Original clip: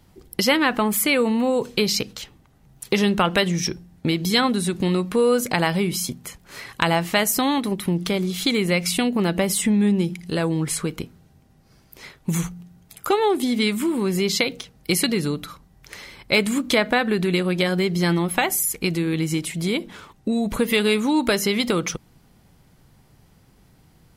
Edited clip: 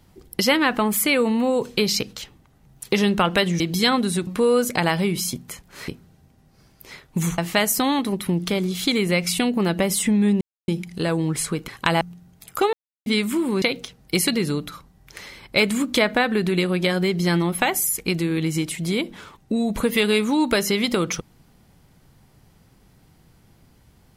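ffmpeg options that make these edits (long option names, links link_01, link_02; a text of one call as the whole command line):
ffmpeg -i in.wav -filter_complex "[0:a]asplit=11[link_01][link_02][link_03][link_04][link_05][link_06][link_07][link_08][link_09][link_10][link_11];[link_01]atrim=end=3.602[link_12];[link_02]atrim=start=4.108:end=4.782[link_13];[link_03]atrim=start=5.028:end=6.642[link_14];[link_04]atrim=start=10.998:end=12.502[link_15];[link_05]atrim=start=6.968:end=10,asetpts=PTS-STARTPTS,afade=type=out:start_time=3.028:duration=0.004:curve=hsin,apad=pad_dur=0.27[link_16];[link_06]atrim=start=10:end=11.002,asetpts=PTS-STARTPTS,afade=type=in:duration=0.004:curve=hsin[link_17];[link_07]atrim=start=6.638:end=6.972[link_18];[link_08]atrim=start=12.498:end=13.22,asetpts=PTS-STARTPTS,afade=type=out:start_time=0.718:duration=0.004:curve=hsin[link_19];[link_09]atrim=start=13.22:end=13.55,asetpts=PTS-STARTPTS,volume=0[link_20];[link_10]atrim=start=13.55:end=14.112,asetpts=PTS-STARTPTS,afade=type=in:duration=0.004:curve=hsin[link_21];[link_11]atrim=start=14.378[link_22];[link_12][link_13]acrossfade=duration=0.004:curve1=hsin:curve2=hsin[link_23];[link_23][link_14]acrossfade=duration=0.004:curve1=hsin:curve2=hsin[link_24];[link_24][link_15]acrossfade=duration=0.004:curve1=hsin:curve2=hsin[link_25];[link_16][link_17]concat=n=2:v=0:a=1[link_26];[link_25][link_26]acrossfade=duration=0.004:curve1=hsin:curve2=hsin[link_27];[link_27][link_18]acrossfade=duration=0.004:curve1=hsin:curve2=hsin[link_28];[link_19][link_20][link_21]concat=n=3:v=0:a=1[link_29];[link_28][link_29]acrossfade=duration=0.004:curve1=hsin:curve2=hsin[link_30];[link_30][link_22]acrossfade=duration=0.004:curve1=hsin:curve2=hsin" out.wav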